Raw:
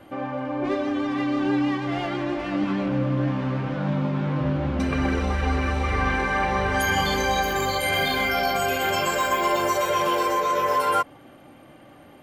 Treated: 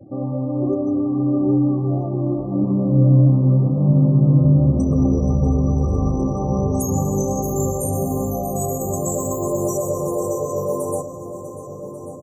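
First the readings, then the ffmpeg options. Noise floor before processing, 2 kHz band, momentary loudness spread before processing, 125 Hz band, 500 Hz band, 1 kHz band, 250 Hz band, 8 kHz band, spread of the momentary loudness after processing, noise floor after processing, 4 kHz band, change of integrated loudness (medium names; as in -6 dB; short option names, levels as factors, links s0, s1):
-49 dBFS, under -40 dB, 5 LU, +12.0 dB, +3.5 dB, -7.5 dB, +7.0 dB, +6.5 dB, 11 LU, -33 dBFS, under -40 dB, +4.5 dB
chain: -filter_complex "[0:a]afftfilt=real='re*gte(hypot(re,im),0.00794)':imag='im*gte(hypot(re,im),0.00794)':win_size=1024:overlap=0.75,asplit=2[s0][s1];[s1]adelay=1141,lowpass=f=5000:p=1,volume=0.266,asplit=2[s2][s3];[s3]adelay=1141,lowpass=f=5000:p=1,volume=0.49,asplit=2[s4][s5];[s5]adelay=1141,lowpass=f=5000:p=1,volume=0.49,asplit=2[s6][s7];[s7]adelay=1141,lowpass=f=5000:p=1,volume=0.49,asplit=2[s8][s9];[s9]adelay=1141,lowpass=f=5000:p=1,volume=0.49[s10];[s2][s4][s6][s8][s10]amix=inputs=5:normalize=0[s11];[s0][s11]amix=inputs=2:normalize=0,afftfilt=real='re*(1-between(b*sr/4096,1300,5800))':imag='im*(1-between(b*sr/4096,1300,5800))':win_size=4096:overlap=0.75,equalizer=f=125:t=o:w=1:g=12,equalizer=f=250:t=o:w=1:g=3,equalizer=f=500:t=o:w=1:g=4,equalizer=f=1000:t=o:w=1:g=-11,equalizer=f=2000:t=o:w=1:g=-11,equalizer=f=4000:t=o:w=1:g=-4,equalizer=f=8000:t=o:w=1:g=8,asplit=2[s12][s13];[s13]aecho=0:1:645|1290|1935|2580:0.15|0.0613|0.0252|0.0103[s14];[s12][s14]amix=inputs=2:normalize=0,volume=1.19"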